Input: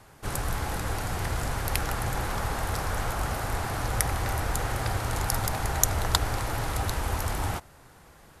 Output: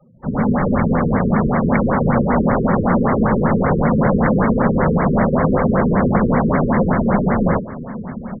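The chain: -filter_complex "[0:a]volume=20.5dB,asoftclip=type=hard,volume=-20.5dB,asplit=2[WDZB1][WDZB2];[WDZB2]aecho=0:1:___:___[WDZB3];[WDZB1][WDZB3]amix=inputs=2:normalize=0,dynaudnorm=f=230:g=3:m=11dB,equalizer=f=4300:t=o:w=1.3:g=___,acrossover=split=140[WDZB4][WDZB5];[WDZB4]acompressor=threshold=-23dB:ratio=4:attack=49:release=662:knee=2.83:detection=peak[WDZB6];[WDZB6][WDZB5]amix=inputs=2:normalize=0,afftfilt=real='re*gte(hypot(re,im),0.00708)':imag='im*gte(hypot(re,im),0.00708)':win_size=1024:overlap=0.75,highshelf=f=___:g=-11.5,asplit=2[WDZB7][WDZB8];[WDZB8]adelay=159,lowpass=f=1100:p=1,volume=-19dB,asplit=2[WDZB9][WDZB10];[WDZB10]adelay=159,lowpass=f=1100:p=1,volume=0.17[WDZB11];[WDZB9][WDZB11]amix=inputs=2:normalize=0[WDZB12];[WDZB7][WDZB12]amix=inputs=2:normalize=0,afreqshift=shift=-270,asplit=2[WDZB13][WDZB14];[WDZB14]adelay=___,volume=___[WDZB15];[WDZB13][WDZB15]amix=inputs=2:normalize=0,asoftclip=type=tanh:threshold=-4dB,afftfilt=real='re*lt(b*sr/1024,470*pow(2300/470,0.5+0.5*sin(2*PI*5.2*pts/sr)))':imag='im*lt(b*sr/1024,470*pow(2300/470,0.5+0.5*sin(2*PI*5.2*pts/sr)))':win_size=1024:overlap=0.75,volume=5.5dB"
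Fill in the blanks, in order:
1183, 0.15, 4.5, 9900, 43, -14dB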